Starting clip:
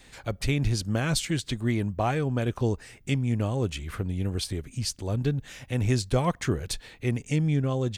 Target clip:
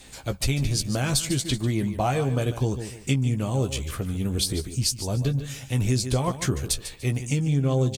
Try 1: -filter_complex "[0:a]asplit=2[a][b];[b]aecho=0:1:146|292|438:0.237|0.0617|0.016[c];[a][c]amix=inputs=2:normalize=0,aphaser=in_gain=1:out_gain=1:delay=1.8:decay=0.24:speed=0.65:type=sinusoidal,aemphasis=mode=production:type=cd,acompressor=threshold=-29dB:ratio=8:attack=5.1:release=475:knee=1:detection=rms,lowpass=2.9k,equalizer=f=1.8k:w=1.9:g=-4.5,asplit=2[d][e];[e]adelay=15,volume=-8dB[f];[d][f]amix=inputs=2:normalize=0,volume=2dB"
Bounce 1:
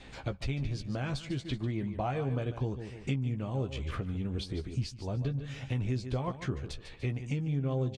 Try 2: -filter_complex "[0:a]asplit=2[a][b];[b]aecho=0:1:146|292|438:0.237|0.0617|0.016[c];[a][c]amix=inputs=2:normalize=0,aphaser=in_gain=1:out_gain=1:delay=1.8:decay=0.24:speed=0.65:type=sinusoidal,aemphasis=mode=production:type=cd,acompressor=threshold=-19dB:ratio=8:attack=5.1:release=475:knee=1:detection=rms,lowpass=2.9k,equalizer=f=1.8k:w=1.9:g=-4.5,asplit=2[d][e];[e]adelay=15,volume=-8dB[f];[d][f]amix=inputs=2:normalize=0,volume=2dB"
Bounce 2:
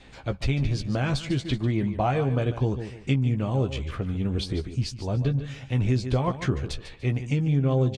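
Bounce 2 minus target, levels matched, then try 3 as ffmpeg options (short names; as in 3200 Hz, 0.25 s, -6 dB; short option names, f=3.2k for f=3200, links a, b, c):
4000 Hz band -6.0 dB
-filter_complex "[0:a]asplit=2[a][b];[b]aecho=0:1:146|292|438:0.237|0.0617|0.016[c];[a][c]amix=inputs=2:normalize=0,aphaser=in_gain=1:out_gain=1:delay=1.8:decay=0.24:speed=0.65:type=sinusoidal,aemphasis=mode=production:type=cd,acompressor=threshold=-19dB:ratio=8:attack=5.1:release=475:knee=1:detection=rms,equalizer=f=1.8k:w=1.9:g=-4.5,asplit=2[d][e];[e]adelay=15,volume=-8dB[f];[d][f]amix=inputs=2:normalize=0,volume=2dB"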